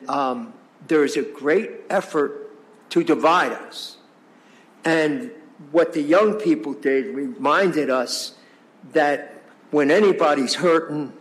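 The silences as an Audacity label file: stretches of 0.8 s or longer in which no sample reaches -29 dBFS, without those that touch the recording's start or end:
3.870000	4.850000	silence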